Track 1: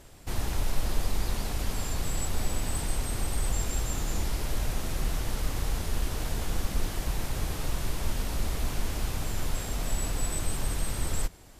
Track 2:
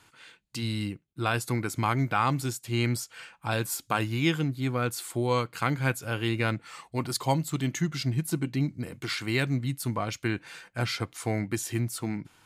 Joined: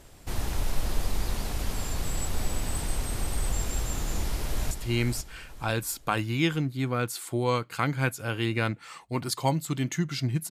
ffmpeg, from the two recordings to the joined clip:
ffmpeg -i cue0.wav -i cue1.wav -filter_complex "[0:a]apad=whole_dur=10.5,atrim=end=10.5,atrim=end=4.712[link_01];[1:a]atrim=start=2.538:end=8.33[link_02];[link_01][link_02]acrossfade=duration=0.004:curve1=hsin:curve2=hsin,asplit=2[link_03][link_04];[link_04]afade=type=in:start_time=4.08:duration=0.01,afade=type=out:start_time=4.71:duration=0.01,aecho=0:1:500|1000|1500|2000:0.398107|0.139338|0.0487681|0.0170688[link_05];[link_03][link_05]amix=inputs=2:normalize=0" out.wav

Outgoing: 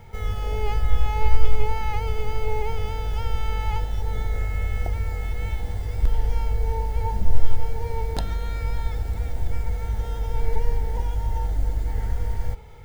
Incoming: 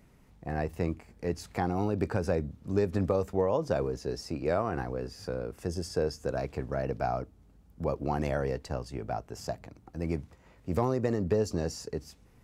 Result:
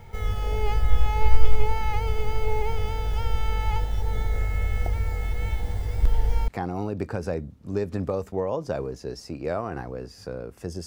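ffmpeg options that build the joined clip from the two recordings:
ffmpeg -i cue0.wav -i cue1.wav -filter_complex "[0:a]apad=whole_dur=10.86,atrim=end=10.86,atrim=end=6.482[link_01];[1:a]atrim=start=1.488:end=5.87[link_02];[link_01][link_02]acrossfade=duration=0.004:curve1=hsin:curve2=hsin" out.wav

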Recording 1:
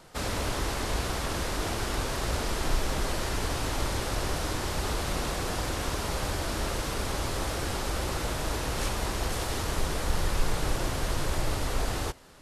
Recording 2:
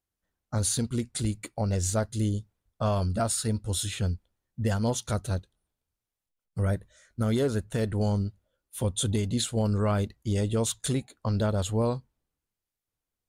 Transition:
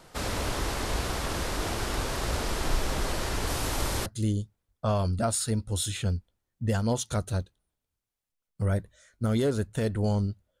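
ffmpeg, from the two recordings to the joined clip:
ffmpeg -i cue0.wav -i cue1.wav -filter_complex "[0:a]asettb=1/sr,asplit=3[link_01][link_02][link_03];[link_01]atrim=end=3.474[link_04];[link_02]atrim=start=3.47:end=4.06,asetpts=PTS-STARTPTS,afade=type=in:duration=0.004:curve=qsin,afade=type=out:start_time=0.586:duration=0.004:curve=qsin,highshelf=frequency=8400:gain=8[link_05];[link_03]atrim=start=4.056[link_06];[link_04][link_05]acrossfade=duration=0.004:curve1=hsin:curve2=qsin[link_07];[link_07][link_06]acrossfade=duration=0.004:curve1=qsin:curve2=hsin,apad=whole_dur=10.6,atrim=end=10.6,atrim=end=4.062[link_08];[1:a]atrim=start=2.028:end=8.57[link_09];[link_08][link_09]acrossfade=duration=0.004:curve1=hsin:curve2=hsin" out.wav

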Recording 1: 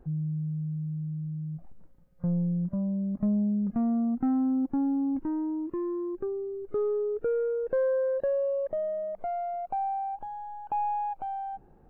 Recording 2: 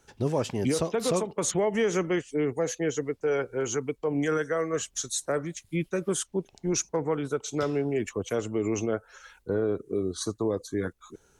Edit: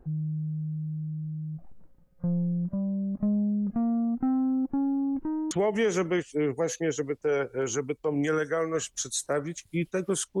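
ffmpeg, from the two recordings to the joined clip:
ffmpeg -i cue0.wav -i cue1.wav -filter_complex "[0:a]apad=whole_dur=10.4,atrim=end=10.4,atrim=end=5.512[link_01];[1:a]atrim=start=1.498:end=6.39[link_02];[link_01][link_02]acrossfade=duration=0.004:curve1=hsin:curve2=hsin" out.wav

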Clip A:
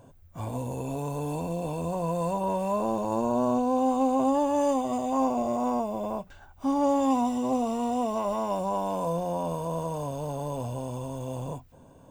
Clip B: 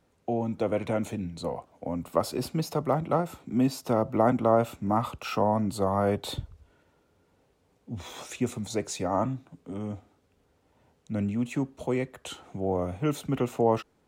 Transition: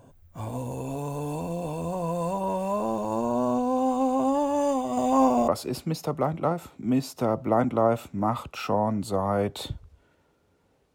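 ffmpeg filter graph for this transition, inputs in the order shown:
ffmpeg -i cue0.wav -i cue1.wav -filter_complex "[0:a]asettb=1/sr,asplit=3[link_01][link_02][link_03];[link_01]atrim=end=4.974[link_04];[link_02]atrim=start=4.97:end=5.48,asetpts=PTS-STARTPTS,afade=type=in:duration=0.004:curve=qsin,afade=type=out:start_time=0.506:duration=0.004:curve=qsin,acontrast=31[link_05];[link_03]atrim=start=5.476[link_06];[link_04][link_05]acrossfade=duration=0.004:curve1=hsin:curve2=qsin[link_07];[link_07][link_06]acrossfade=duration=0.004:curve1=qsin:curve2=hsin,apad=whole_dur=10.94,atrim=end=10.94,atrim=end=5.482[link_08];[1:a]atrim=start=2.158:end=7.62[link_09];[link_08][link_09]acrossfade=duration=0.004:curve1=hsin:curve2=hsin" out.wav

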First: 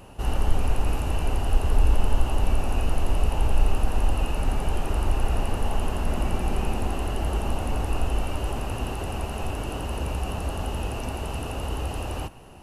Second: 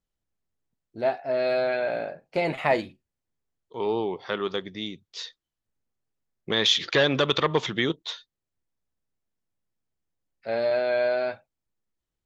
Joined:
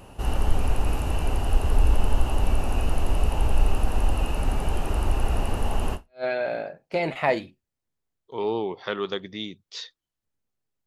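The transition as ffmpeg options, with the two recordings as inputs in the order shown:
ffmpeg -i cue0.wav -i cue1.wav -filter_complex "[0:a]apad=whole_dur=10.86,atrim=end=10.86,atrim=end=6.24,asetpts=PTS-STARTPTS[link_01];[1:a]atrim=start=1.36:end=6.28,asetpts=PTS-STARTPTS[link_02];[link_01][link_02]acrossfade=duration=0.3:curve1=exp:curve2=exp" out.wav

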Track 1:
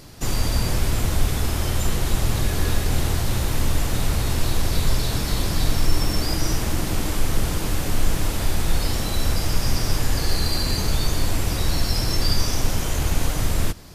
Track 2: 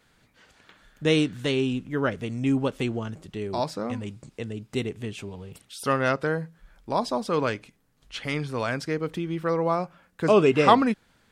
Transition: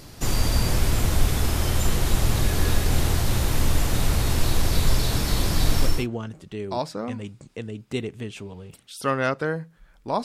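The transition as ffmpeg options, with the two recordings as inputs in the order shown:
ffmpeg -i cue0.wav -i cue1.wav -filter_complex "[0:a]apad=whole_dur=10.24,atrim=end=10.24,atrim=end=6.07,asetpts=PTS-STARTPTS[link_01];[1:a]atrim=start=2.57:end=7.06,asetpts=PTS-STARTPTS[link_02];[link_01][link_02]acrossfade=duration=0.32:curve1=qsin:curve2=qsin" out.wav

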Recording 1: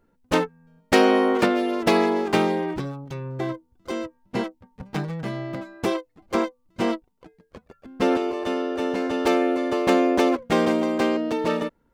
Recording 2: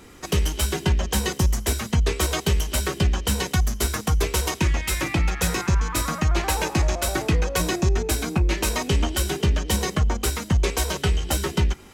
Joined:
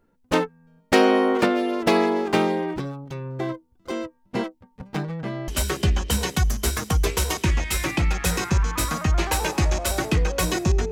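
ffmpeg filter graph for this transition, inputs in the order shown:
ffmpeg -i cue0.wav -i cue1.wav -filter_complex "[0:a]asettb=1/sr,asplit=3[link_01][link_02][link_03];[link_01]atrim=end=5.034[link_04];[link_02]atrim=start=5.03:end=5.48,asetpts=PTS-STARTPTS,afade=type=in:duration=0.004:curve=qsin,afade=type=out:start_time=0.446:duration=0.004:curve=qsin,highshelf=frequency=6300:gain=-10[link_05];[link_03]atrim=start=5.476[link_06];[link_04][link_05]acrossfade=duration=0.004:curve1=hsin:curve2=qsin[link_07];[link_07][link_06]acrossfade=duration=0.004:curve1=qsin:curve2=hsin,apad=whole_dur=10.91,atrim=end=10.91,atrim=end=5.482[link_08];[1:a]atrim=start=2.648:end=8.08[link_09];[link_08][link_09]acrossfade=duration=0.004:curve1=hsin:curve2=hsin" out.wav

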